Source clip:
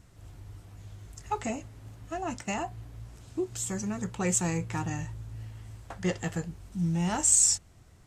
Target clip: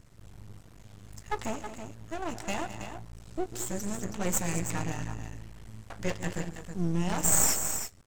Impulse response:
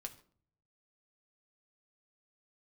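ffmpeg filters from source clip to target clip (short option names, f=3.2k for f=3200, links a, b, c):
-filter_complex "[0:a]aecho=1:1:144|212|323:0.158|0.237|0.355,asplit=2[a][b];[1:a]atrim=start_sample=2205[c];[b][c]afir=irnorm=-1:irlink=0,volume=-6dB[d];[a][d]amix=inputs=2:normalize=0,aeval=exprs='max(val(0),0)':c=same"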